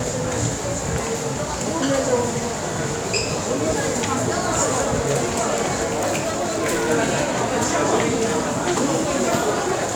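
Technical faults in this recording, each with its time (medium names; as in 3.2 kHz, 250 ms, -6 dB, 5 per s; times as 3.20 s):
5.85–6.91 s: clipped -18 dBFS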